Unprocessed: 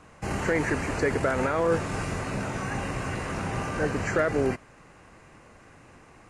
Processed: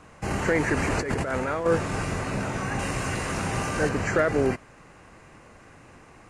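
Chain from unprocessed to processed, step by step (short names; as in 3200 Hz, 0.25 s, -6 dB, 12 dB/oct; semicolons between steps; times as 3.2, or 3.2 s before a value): 0.77–1.66 negative-ratio compressor -29 dBFS, ratio -1; 2.79–3.89 high shelf 3600 Hz +8 dB; gain +2 dB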